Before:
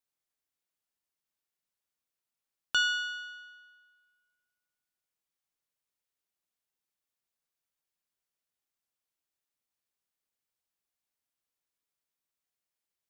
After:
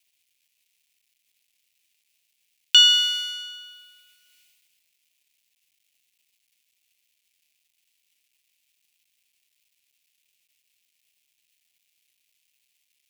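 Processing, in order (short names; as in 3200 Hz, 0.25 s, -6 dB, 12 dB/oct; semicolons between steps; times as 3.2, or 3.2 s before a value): G.711 law mismatch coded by mu; resonant high shelf 1800 Hz +11.5 dB, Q 3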